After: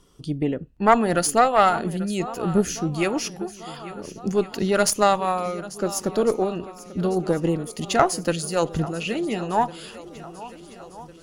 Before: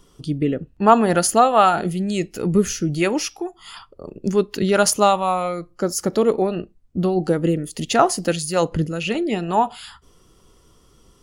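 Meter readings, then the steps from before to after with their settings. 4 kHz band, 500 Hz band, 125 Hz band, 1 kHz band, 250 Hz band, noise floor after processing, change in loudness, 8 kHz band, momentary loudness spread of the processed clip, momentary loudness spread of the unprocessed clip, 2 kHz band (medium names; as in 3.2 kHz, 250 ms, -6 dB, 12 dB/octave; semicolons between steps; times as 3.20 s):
-3.0 dB, -3.0 dB, -3.5 dB, -3.0 dB, -3.5 dB, -45 dBFS, -3.0 dB, -3.0 dB, 19 LU, 12 LU, -1.5 dB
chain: shuffle delay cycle 1403 ms, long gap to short 1.5:1, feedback 48%, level -17 dB; Chebyshev shaper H 2 -11 dB, 5 -30 dB, 6 -45 dB, 7 -33 dB, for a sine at -1 dBFS; trim -3.5 dB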